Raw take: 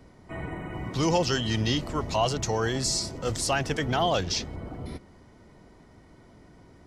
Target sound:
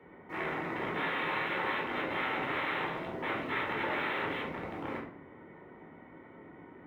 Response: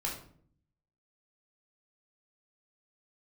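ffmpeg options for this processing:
-filter_complex "[0:a]aresample=8000,aeval=exprs='(mod(26.6*val(0)+1,2)-1)/26.6':channel_layout=same,aresample=44100,equalizer=frequency=2000:width=4.2:gain=7,asplit=2[link_01][link_02];[link_02]aeval=exprs='(mod(84.1*val(0)+1,2)-1)/84.1':channel_layout=same,volume=-9dB[link_03];[link_01][link_03]amix=inputs=2:normalize=0,highpass=73,acrossover=split=210 2500:gain=0.158 1 0.141[link_04][link_05][link_06];[link_04][link_05][link_06]amix=inputs=3:normalize=0[link_07];[1:a]atrim=start_sample=2205[link_08];[link_07][link_08]afir=irnorm=-1:irlink=0,volume=-2dB"

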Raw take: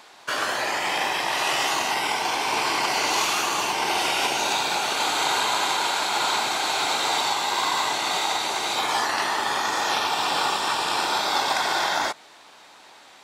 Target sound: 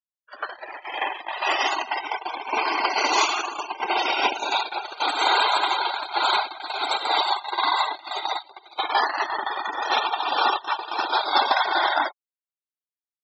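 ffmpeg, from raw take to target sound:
ffmpeg -i in.wav -af "afftfilt=real='re*gte(hypot(re,im),0.0794)':imag='im*gte(hypot(re,im),0.0794)':win_size=1024:overlap=0.75,agate=range=-30dB:threshold=-24dB:ratio=16:detection=peak,bandreject=frequency=2900:width=24,volume=5.5dB" out.wav

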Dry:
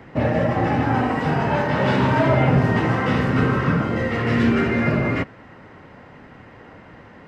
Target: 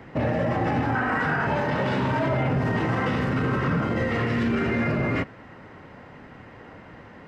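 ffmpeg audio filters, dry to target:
ffmpeg -i in.wav -filter_complex "[0:a]asettb=1/sr,asplit=3[link_01][link_02][link_03];[link_01]atrim=end=0.954[link_04];[link_02]atrim=start=0.95:end=1.47,asetpts=PTS-STARTPTS,afade=type=in:duration=0.004:curve=qsin,afade=type=out:start_time=0.516:duration=0.004:curve=qsin,equalizer=frequency=1500:width_type=o:width=0.73:gain=14.5[link_05];[link_03]atrim=start=1.466[link_06];[link_04][link_05]acrossfade=duration=0.004:curve1=hsin:curve2=qsin[link_07];[link_07][link_06]acrossfade=duration=0.004:curve1=qsin:curve2=hsin,alimiter=limit=-15.5dB:level=0:latency=1:release=24,volume=-1dB" out.wav

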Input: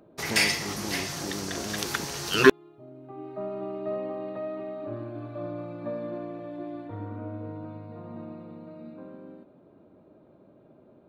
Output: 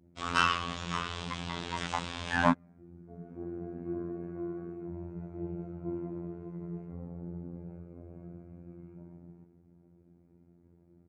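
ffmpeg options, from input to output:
ffmpeg -i in.wav -filter_complex "[0:a]adynamicequalizer=threshold=0.00562:dfrequency=2000:dqfactor=1.3:tfrequency=2000:tqfactor=1.3:attack=5:release=100:ratio=0.375:range=3:mode=boostabove:tftype=bell,flanger=delay=19.5:depth=7.7:speed=2.3,asetrate=25476,aresample=44100,atempo=1.73107,asplit=2[link_01][link_02];[link_02]asoftclip=type=tanh:threshold=-20.5dB,volume=-7dB[link_03];[link_01][link_03]amix=inputs=2:normalize=0,afftfilt=real='hypot(re,im)*cos(PI*b)':imag='0':win_size=2048:overlap=0.75,volume=-2dB" out.wav

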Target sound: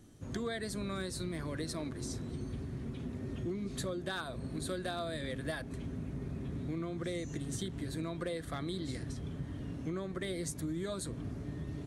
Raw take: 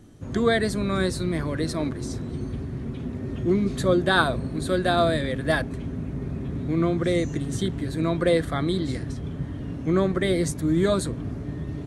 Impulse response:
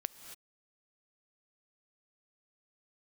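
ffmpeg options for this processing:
-af "highshelf=frequency=3400:gain=7,acompressor=threshold=-25dB:ratio=16,asoftclip=type=hard:threshold=-19.5dB,volume=-8.5dB"

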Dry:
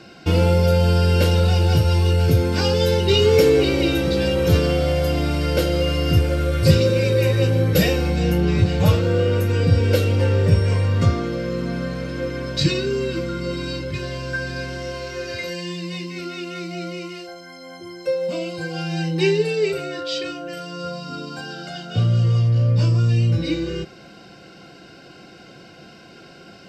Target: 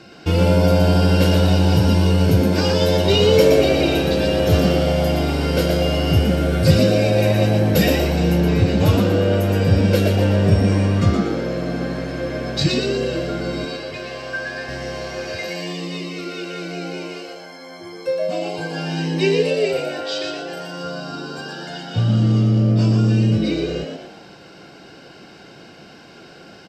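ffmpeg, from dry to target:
ffmpeg -i in.wav -filter_complex "[0:a]asettb=1/sr,asplit=3[link_01][link_02][link_03];[link_01]atrim=end=13.654[link_04];[link_02]atrim=start=13.65:end=14.69,asetpts=PTS-STARTPTS,afade=type=in:duration=0.004:curve=qsin,afade=type=out:start_time=1.036:duration=0.004:curve=qsin,bass=frequency=250:gain=-13,treble=frequency=4000:gain=-4[link_05];[link_03]atrim=start=14.686[link_06];[link_04][link_05]acrossfade=duration=0.004:curve1=hsin:curve2=qsin[link_07];[link_07][link_06]acrossfade=duration=0.004:curve1=qsin:curve2=hsin,asplit=6[link_08][link_09][link_10][link_11][link_12][link_13];[link_09]adelay=119,afreqshift=100,volume=-5dB[link_14];[link_10]adelay=238,afreqshift=200,volume=-12.7dB[link_15];[link_11]adelay=357,afreqshift=300,volume=-20.5dB[link_16];[link_12]adelay=476,afreqshift=400,volume=-28.2dB[link_17];[link_13]adelay=595,afreqshift=500,volume=-36dB[link_18];[link_08][link_14][link_15][link_16][link_17][link_18]amix=inputs=6:normalize=0" out.wav

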